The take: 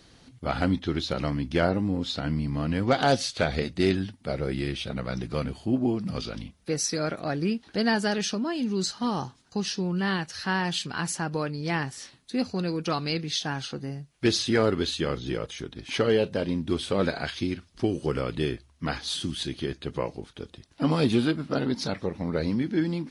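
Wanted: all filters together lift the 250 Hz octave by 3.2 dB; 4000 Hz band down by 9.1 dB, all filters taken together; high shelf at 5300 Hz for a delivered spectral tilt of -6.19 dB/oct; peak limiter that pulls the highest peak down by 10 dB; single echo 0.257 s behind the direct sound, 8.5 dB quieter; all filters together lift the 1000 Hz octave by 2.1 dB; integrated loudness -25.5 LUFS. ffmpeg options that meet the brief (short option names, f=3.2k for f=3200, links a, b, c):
-af "equalizer=f=250:t=o:g=4,equalizer=f=1k:t=o:g=3.5,equalizer=f=4k:t=o:g=-8,highshelf=f=5.3k:g=-8.5,alimiter=limit=-19.5dB:level=0:latency=1,aecho=1:1:257:0.376,volume=4dB"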